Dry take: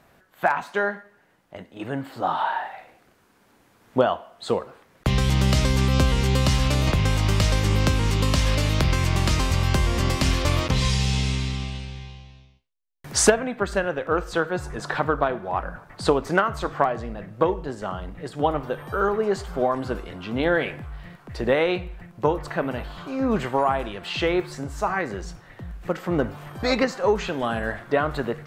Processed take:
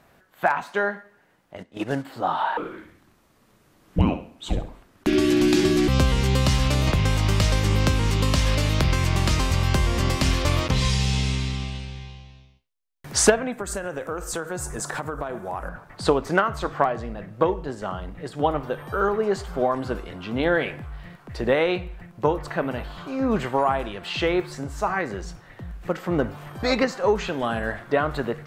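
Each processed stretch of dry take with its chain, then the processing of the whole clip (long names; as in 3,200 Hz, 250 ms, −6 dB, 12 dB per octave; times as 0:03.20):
0:01.58–0:02.05: one scale factor per block 5 bits + low-pass filter 8,000 Hz + transient designer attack +7 dB, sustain −7 dB
0:02.57–0:05.88: parametric band 1,300 Hz −2.5 dB 0.35 octaves + frequency shifter −430 Hz + flutter between parallel walls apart 11.4 metres, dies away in 0.38 s
0:13.52–0:15.69: high shelf with overshoot 5,500 Hz +13 dB, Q 1.5 + downward compressor 5 to 1, threshold −25 dBFS
whole clip: no processing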